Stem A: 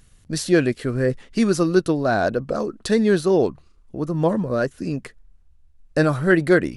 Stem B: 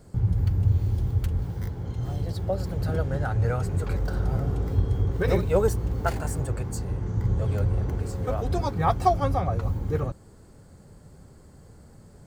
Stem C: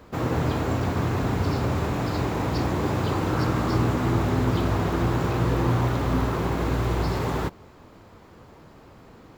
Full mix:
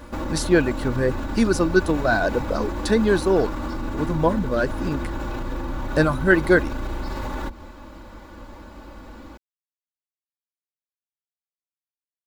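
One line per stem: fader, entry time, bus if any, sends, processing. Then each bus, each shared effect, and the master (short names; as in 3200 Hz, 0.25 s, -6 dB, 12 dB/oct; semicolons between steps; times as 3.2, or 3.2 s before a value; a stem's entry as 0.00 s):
-0.5 dB, 0.00 s, no bus, no send, reverb removal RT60 0.77 s
off
+3.0 dB, 0.00 s, bus A, no send, octaver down 2 oct, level 0 dB; comb 3.5 ms, depth 93%; compressor, threshold -24 dBFS, peak gain reduction 11 dB
bus A: 0.0 dB, limiter -20.5 dBFS, peak gain reduction 7.5 dB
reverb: off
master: small resonant body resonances 1000/1500/3800 Hz, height 8 dB, ringing for 40 ms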